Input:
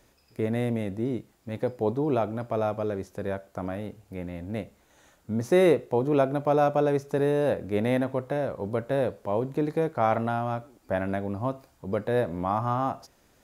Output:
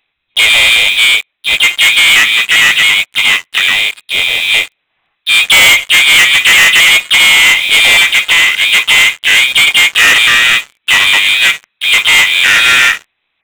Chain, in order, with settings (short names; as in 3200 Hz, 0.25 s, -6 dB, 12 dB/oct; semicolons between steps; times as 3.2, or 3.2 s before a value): inverted band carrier 2600 Hz; harmoniser +4 st -17 dB, +5 st -5 dB, +7 st -5 dB; sample leveller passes 5; gain +4 dB